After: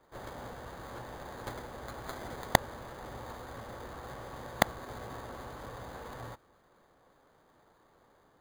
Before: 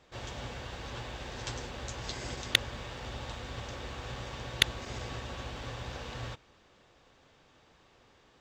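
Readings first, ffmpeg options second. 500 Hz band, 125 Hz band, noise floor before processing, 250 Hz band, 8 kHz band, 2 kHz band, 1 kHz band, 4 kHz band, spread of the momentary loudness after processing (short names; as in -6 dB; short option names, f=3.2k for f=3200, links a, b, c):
+3.0 dB, -4.0 dB, -63 dBFS, +1.5 dB, -3.0 dB, -2.0 dB, +5.5 dB, -10.0 dB, 15 LU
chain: -filter_complex "[0:a]lowshelf=f=230:g=-9,acrossover=split=280|1800[a][b][c];[c]acrusher=samples=16:mix=1:aa=0.000001[d];[a][b][d]amix=inputs=3:normalize=0"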